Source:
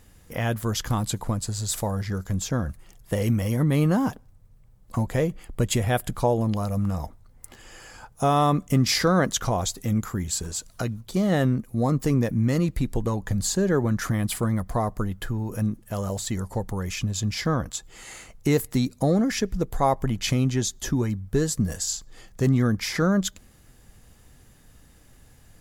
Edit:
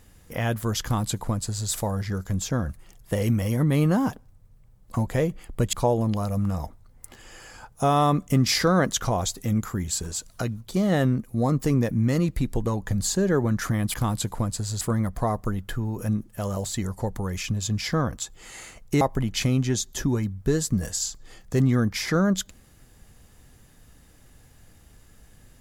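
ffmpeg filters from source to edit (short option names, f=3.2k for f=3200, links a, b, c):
-filter_complex "[0:a]asplit=5[a][b][c][d][e];[a]atrim=end=5.732[f];[b]atrim=start=6.128:end=14.342[g];[c]atrim=start=0.828:end=1.702[h];[d]atrim=start=14.338:end=18.542[i];[e]atrim=start=19.878[j];[f][g]acrossfade=d=0.004:c1=hsin:c2=hsin[k];[k][h]acrossfade=d=0.004:c1=hsin:c2=hsin[l];[l][i]acrossfade=d=0.004:c1=hsin:c2=hsin[m];[m][j]acrossfade=d=0.004:c1=hsin:c2=hsin"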